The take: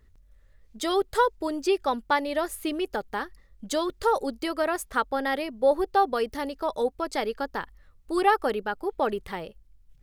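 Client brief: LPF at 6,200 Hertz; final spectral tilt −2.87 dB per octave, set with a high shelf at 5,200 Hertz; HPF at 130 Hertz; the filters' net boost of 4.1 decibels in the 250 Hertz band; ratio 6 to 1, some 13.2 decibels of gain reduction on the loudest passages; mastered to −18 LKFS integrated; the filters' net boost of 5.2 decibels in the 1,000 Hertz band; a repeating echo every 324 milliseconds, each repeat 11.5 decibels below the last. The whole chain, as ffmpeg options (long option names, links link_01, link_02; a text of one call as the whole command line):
ffmpeg -i in.wav -af "highpass=130,lowpass=6200,equalizer=frequency=250:width_type=o:gain=5.5,equalizer=frequency=1000:width_type=o:gain=6.5,highshelf=frequency=5200:gain=-8.5,acompressor=threshold=-27dB:ratio=6,aecho=1:1:324|648|972:0.266|0.0718|0.0194,volume=14dB" out.wav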